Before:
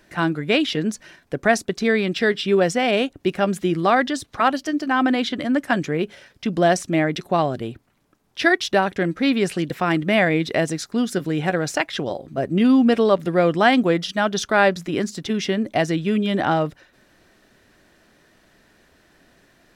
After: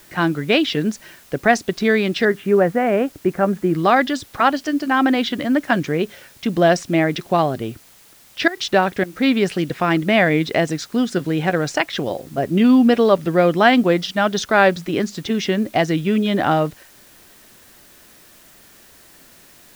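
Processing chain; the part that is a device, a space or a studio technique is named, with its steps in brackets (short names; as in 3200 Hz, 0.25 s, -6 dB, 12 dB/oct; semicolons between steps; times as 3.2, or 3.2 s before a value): 2.25–3.75 LPF 1900 Hz 24 dB/oct; worn cassette (LPF 6500 Hz; wow and flutter; level dips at 8.48/9.04, 88 ms -15 dB; white noise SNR 30 dB); gain +2.5 dB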